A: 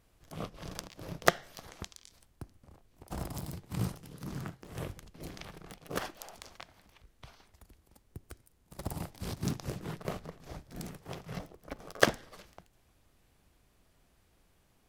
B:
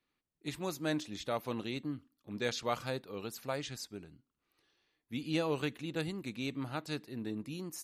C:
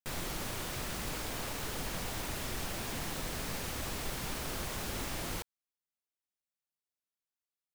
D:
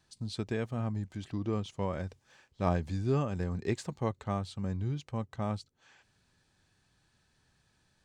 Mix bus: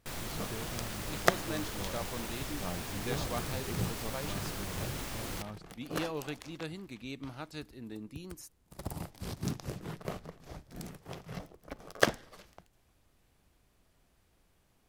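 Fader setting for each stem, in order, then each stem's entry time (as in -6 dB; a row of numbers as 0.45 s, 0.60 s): -1.5 dB, -4.5 dB, -2.0 dB, -11.0 dB; 0.00 s, 0.65 s, 0.00 s, 0.00 s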